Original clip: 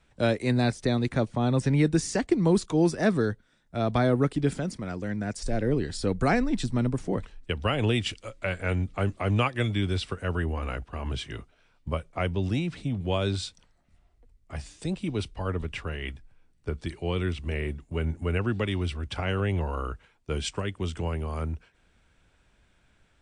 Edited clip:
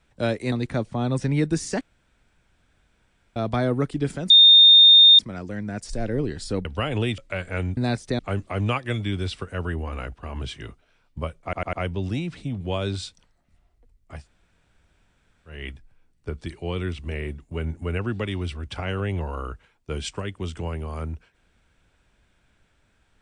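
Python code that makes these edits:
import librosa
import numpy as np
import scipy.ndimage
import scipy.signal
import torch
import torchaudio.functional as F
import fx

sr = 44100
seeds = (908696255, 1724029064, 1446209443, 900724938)

y = fx.edit(x, sr, fx.move(start_s=0.52, length_s=0.42, to_s=8.89),
    fx.room_tone_fill(start_s=2.23, length_s=1.55),
    fx.insert_tone(at_s=4.72, length_s=0.89, hz=3650.0, db=-8.0),
    fx.cut(start_s=6.18, length_s=1.34),
    fx.cut(start_s=8.05, length_s=0.25),
    fx.stutter(start_s=12.13, slice_s=0.1, count=4),
    fx.room_tone_fill(start_s=14.6, length_s=1.33, crossfade_s=0.16), tone=tone)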